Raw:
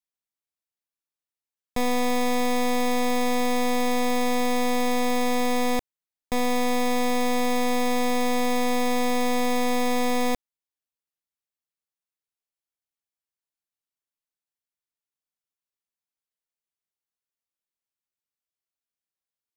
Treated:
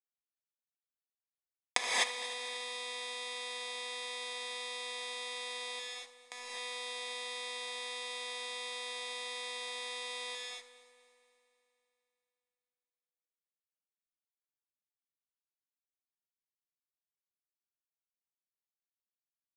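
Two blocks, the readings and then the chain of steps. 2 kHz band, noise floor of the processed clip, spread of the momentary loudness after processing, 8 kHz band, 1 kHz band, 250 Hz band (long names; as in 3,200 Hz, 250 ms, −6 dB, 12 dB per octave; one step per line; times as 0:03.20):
−8.5 dB, below −85 dBFS, 7 LU, −8.5 dB, −18.5 dB, −39.5 dB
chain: gain on one half-wave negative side −7 dB
camcorder AGC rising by 19 dB per second
high-pass filter 1,500 Hz 12 dB per octave
bit reduction 7 bits
flanger 1.5 Hz, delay 4.3 ms, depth 5.6 ms, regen +88%
on a send: echo machine with several playback heads 77 ms, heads first and third, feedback 69%, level −17.5 dB
on the sum: reverb whose tail is shaped and stops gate 280 ms rising, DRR −4 dB
downsampling to 22,050 Hz
level −6 dB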